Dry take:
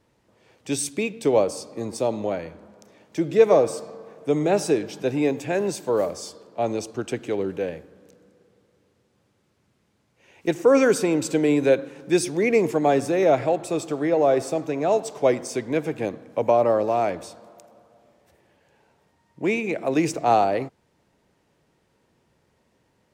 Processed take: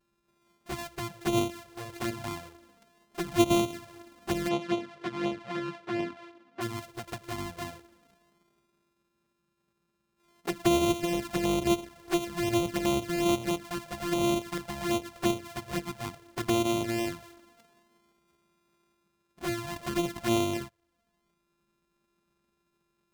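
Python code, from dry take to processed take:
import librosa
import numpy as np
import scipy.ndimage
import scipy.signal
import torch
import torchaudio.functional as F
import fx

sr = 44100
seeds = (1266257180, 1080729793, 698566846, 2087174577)

y = np.r_[np.sort(x[:len(x) // 128 * 128].reshape(-1, 128), axis=1).ravel(), x[len(x) // 128 * 128:]]
y = fx.env_flanger(y, sr, rest_ms=5.1, full_db=-16.5)
y = fx.bandpass_edges(y, sr, low_hz=170.0, high_hz=fx.line((4.48, 4100.0), (6.6, 2800.0)), at=(4.48, 6.6), fade=0.02)
y = y * librosa.db_to_amplitude(-6.5)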